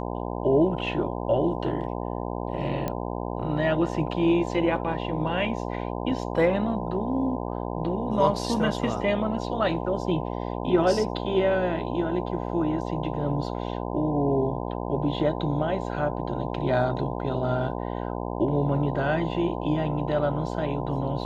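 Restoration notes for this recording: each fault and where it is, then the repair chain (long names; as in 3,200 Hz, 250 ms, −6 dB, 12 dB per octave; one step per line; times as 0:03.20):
mains buzz 60 Hz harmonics 17 −31 dBFS
0:02.88: click −15 dBFS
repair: click removal
hum removal 60 Hz, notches 17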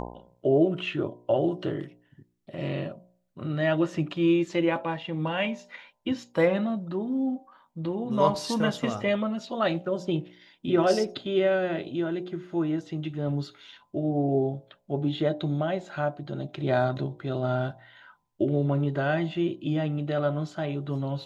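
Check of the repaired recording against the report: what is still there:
none of them is left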